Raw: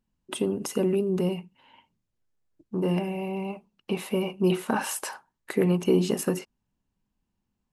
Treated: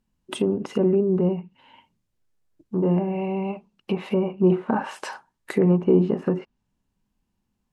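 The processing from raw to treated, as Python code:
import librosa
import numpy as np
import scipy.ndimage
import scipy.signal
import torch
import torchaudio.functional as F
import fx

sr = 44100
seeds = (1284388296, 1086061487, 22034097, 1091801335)

y = fx.hpss(x, sr, part='harmonic', gain_db=3)
y = fx.env_lowpass_down(y, sr, base_hz=1200.0, full_db=-21.5)
y = F.gain(torch.from_numpy(y), 2.0).numpy()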